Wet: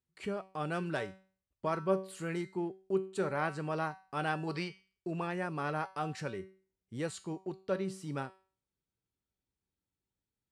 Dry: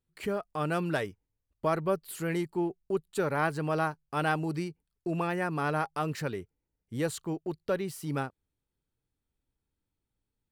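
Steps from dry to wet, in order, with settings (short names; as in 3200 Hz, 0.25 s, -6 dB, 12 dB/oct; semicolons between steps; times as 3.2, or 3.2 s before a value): HPF 53 Hz; spectral gain 4.47–4.8, 400–5500 Hz +10 dB; LPF 9200 Hz 24 dB/oct; resonator 190 Hz, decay 0.41 s, harmonics all, mix 70%; gain +3.5 dB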